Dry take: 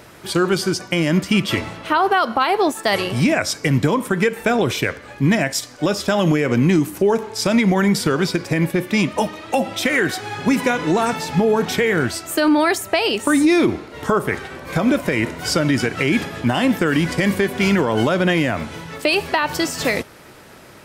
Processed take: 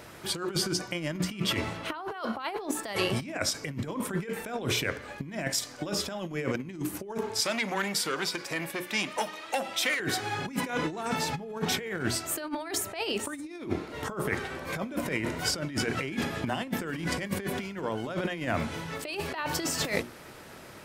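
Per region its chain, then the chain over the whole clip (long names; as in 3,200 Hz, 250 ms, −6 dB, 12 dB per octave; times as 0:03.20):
0:07.40–0:10.00: high-pass filter 990 Hz 6 dB per octave + saturating transformer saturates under 1,500 Hz
whole clip: mains-hum notches 60/120/180/240/300/360/420 Hz; compressor whose output falls as the input rises −22 dBFS, ratio −0.5; every ending faded ahead of time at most 230 dB per second; level −8 dB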